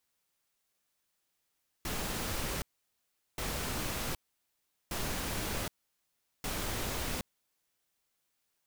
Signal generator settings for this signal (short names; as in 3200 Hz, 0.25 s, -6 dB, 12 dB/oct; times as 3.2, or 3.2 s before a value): noise bursts pink, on 0.77 s, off 0.76 s, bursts 4, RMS -35.5 dBFS